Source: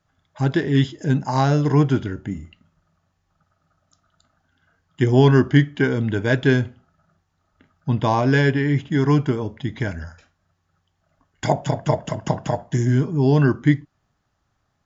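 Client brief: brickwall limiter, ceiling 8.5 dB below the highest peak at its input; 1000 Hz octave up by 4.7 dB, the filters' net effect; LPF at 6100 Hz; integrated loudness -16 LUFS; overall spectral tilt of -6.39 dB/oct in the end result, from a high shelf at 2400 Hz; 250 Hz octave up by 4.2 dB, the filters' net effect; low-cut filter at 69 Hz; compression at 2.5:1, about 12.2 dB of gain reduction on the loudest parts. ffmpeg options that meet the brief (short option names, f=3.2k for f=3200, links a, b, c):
-af "highpass=69,lowpass=6.1k,equalizer=f=250:t=o:g=5,equalizer=f=1k:t=o:g=6.5,highshelf=f=2.4k:g=-6.5,acompressor=threshold=-25dB:ratio=2.5,volume=13dB,alimiter=limit=-4.5dB:level=0:latency=1"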